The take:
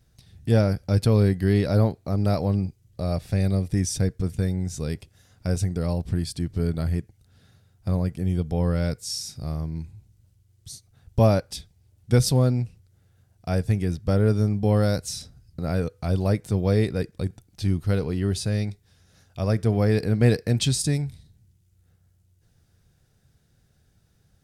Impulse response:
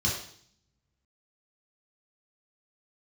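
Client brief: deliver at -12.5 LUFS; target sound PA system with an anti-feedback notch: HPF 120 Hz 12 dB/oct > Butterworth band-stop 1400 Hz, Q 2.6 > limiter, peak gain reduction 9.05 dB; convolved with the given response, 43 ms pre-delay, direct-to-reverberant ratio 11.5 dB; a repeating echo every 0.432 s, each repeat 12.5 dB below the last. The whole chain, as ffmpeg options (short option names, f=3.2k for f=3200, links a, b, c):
-filter_complex "[0:a]aecho=1:1:432|864|1296:0.237|0.0569|0.0137,asplit=2[a][b];[1:a]atrim=start_sample=2205,adelay=43[c];[b][c]afir=irnorm=-1:irlink=0,volume=-20dB[d];[a][d]amix=inputs=2:normalize=0,highpass=120,asuperstop=centerf=1400:order=8:qfactor=2.6,volume=14.5dB,alimiter=limit=-2dB:level=0:latency=1"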